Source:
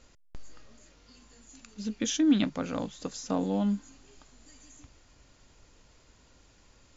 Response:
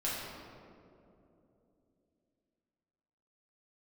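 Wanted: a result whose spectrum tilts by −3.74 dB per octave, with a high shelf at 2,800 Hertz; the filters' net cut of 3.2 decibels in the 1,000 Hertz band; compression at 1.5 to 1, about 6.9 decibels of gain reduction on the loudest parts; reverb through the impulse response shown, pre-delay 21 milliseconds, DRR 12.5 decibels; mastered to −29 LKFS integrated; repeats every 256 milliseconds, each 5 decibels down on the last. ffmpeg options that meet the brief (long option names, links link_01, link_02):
-filter_complex "[0:a]equalizer=frequency=1000:width_type=o:gain=-5.5,highshelf=frequency=2800:gain=7.5,acompressor=threshold=-38dB:ratio=1.5,aecho=1:1:256|512|768|1024|1280|1536|1792:0.562|0.315|0.176|0.0988|0.0553|0.031|0.0173,asplit=2[link_01][link_02];[1:a]atrim=start_sample=2205,adelay=21[link_03];[link_02][link_03]afir=irnorm=-1:irlink=0,volume=-18dB[link_04];[link_01][link_04]amix=inputs=2:normalize=0,volume=5dB"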